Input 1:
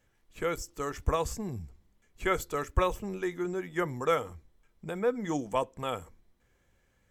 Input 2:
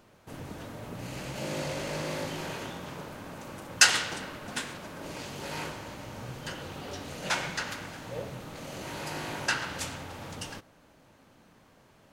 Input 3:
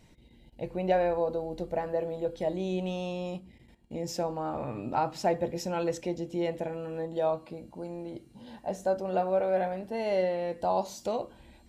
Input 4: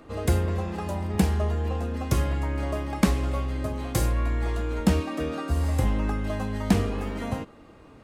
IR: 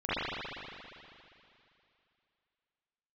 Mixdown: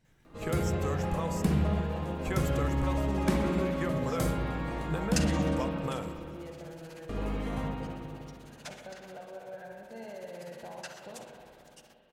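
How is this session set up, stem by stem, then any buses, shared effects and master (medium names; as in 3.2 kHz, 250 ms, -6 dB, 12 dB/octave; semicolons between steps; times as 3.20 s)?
+2.5 dB, 0.05 s, send -21 dB, compression 4:1, threshold -38 dBFS, peak gain reduction 16 dB
-18.0 dB, 1.35 s, send -18.5 dB, tilt EQ +2.5 dB/octave; tremolo 16 Hz, depth 87%
-15.0 dB, 0.00 s, send -11 dB, compression, threshold -30 dBFS, peak gain reduction 9.5 dB; peaking EQ 1.6 kHz +13 dB 0.22 oct
-10.0 dB, 0.25 s, muted 5.58–7.09 s, send -7 dB, peaking EQ 91 Hz -6 dB 0.77 oct; saturation -11 dBFS, distortion -23 dB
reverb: on, RT60 2.7 s, pre-delay 39 ms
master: peaking EQ 150 Hz +10.5 dB 0.32 oct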